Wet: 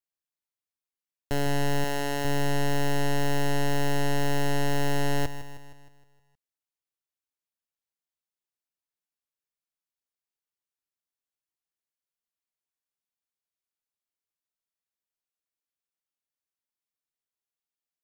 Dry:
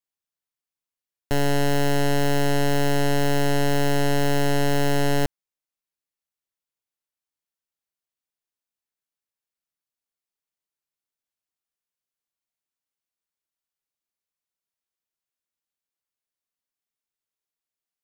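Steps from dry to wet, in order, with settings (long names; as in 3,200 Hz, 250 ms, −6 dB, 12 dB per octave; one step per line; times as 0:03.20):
0:01.84–0:02.25: low-shelf EQ 150 Hz −11.5 dB
feedback echo at a low word length 156 ms, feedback 55%, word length 9 bits, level −12.5 dB
level −5 dB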